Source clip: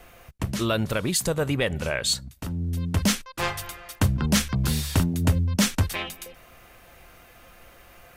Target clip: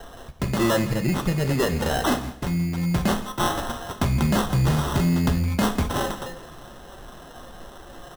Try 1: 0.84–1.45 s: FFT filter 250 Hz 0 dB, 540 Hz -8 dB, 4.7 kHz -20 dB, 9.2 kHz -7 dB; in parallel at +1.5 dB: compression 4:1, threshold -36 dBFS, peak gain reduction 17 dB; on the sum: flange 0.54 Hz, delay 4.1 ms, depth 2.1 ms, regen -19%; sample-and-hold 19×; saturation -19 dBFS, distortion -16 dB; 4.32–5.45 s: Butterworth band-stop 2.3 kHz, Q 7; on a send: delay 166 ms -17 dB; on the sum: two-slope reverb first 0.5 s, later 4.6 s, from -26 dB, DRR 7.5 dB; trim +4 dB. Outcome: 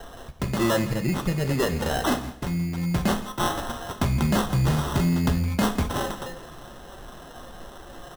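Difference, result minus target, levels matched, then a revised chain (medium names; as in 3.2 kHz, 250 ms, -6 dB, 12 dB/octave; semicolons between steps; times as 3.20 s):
compression: peak gain reduction +7 dB
0.84–1.45 s: FFT filter 250 Hz 0 dB, 540 Hz -8 dB, 4.7 kHz -20 dB, 9.2 kHz -7 dB; in parallel at +1.5 dB: compression 4:1, threshold -26.5 dBFS, peak gain reduction 10 dB; on the sum: flange 0.54 Hz, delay 4.1 ms, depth 2.1 ms, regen -19%; sample-and-hold 19×; saturation -19 dBFS, distortion -14 dB; 4.32–5.45 s: Butterworth band-stop 2.3 kHz, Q 7; on a send: delay 166 ms -17 dB; on the sum: two-slope reverb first 0.5 s, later 4.6 s, from -26 dB, DRR 7.5 dB; trim +4 dB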